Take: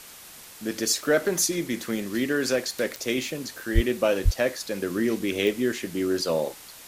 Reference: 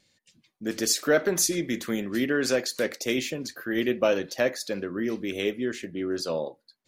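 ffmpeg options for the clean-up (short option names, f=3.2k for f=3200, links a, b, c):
-filter_complex "[0:a]adeclick=t=4,asplit=3[a][b][c];[a]afade=t=out:st=3.74:d=0.02[d];[b]highpass=f=140:w=0.5412,highpass=f=140:w=1.3066,afade=t=in:st=3.74:d=0.02,afade=t=out:st=3.86:d=0.02[e];[c]afade=t=in:st=3.86:d=0.02[f];[d][e][f]amix=inputs=3:normalize=0,asplit=3[g][h][i];[g]afade=t=out:st=4.24:d=0.02[j];[h]highpass=f=140:w=0.5412,highpass=f=140:w=1.3066,afade=t=in:st=4.24:d=0.02,afade=t=out:st=4.36:d=0.02[k];[i]afade=t=in:st=4.36:d=0.02[l];[j][k][l]amix=inputs=3:normalize=0,afwtdn=0.0063,asetnsamples=n=441:p=0,asendcmd='4.82 volume volume -4dB',volume=0dB"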